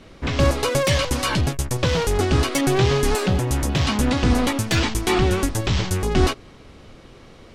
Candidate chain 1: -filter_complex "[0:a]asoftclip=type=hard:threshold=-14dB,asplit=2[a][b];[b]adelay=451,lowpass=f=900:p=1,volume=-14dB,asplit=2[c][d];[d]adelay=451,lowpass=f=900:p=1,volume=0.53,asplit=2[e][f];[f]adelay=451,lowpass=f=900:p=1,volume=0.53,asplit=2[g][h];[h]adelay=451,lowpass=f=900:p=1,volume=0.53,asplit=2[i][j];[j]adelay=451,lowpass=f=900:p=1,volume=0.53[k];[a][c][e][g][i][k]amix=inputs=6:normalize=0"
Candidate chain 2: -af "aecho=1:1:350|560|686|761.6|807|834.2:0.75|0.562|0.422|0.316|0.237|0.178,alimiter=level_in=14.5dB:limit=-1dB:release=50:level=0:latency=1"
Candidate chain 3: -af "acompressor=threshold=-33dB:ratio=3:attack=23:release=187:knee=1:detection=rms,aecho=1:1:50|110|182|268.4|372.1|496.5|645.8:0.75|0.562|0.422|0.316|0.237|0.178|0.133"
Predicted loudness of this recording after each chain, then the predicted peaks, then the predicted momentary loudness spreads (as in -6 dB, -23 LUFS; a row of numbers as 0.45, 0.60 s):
-21.5, -10.0, -29.0 LUFS; -11.5, -1.0, -13.5 dBFS; 12, 1, 10 LU